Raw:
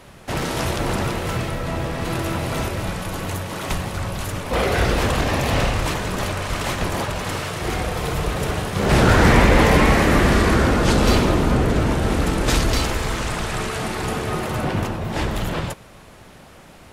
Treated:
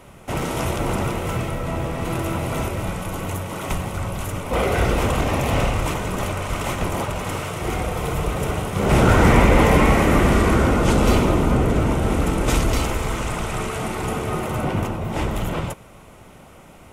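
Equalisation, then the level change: bell 4400 Hz -9 dB 0.7 oct; notch 1700 Hz, Q 6.2; 0.0 dB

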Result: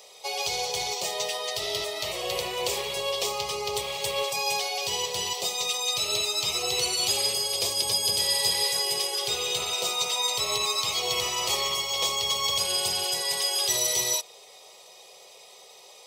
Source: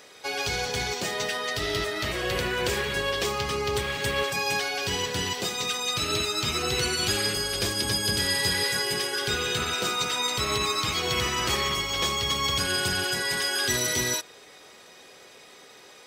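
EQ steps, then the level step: HPF 480 Hz 6 dB/oct; fixed phaser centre 650 Hz, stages 4; +3.5 dB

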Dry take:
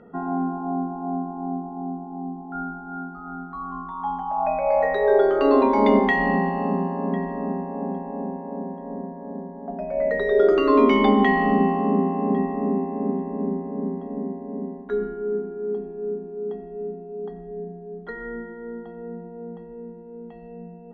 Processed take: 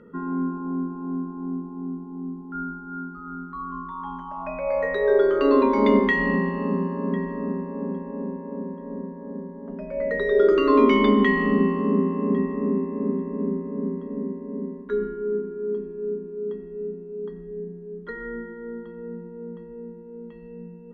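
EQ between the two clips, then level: Butterworth band-stop 740 Hz, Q 2.1; 0.0 dB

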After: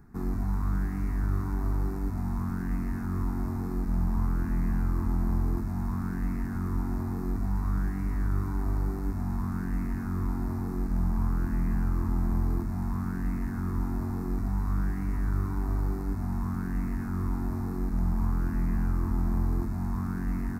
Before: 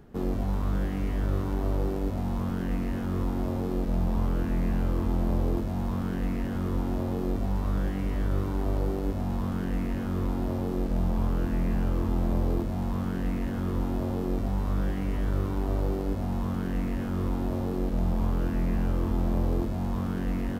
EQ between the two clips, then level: fixed phaser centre 1300 Hz, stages 4; 0.0 dB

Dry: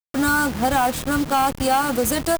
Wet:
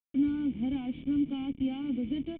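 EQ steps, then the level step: vocal tract filter i; -3.0 dB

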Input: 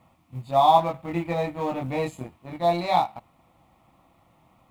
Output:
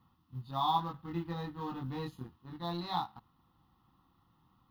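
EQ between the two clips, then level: fixed phaser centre 2300 Hz, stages 6; -6.5 dB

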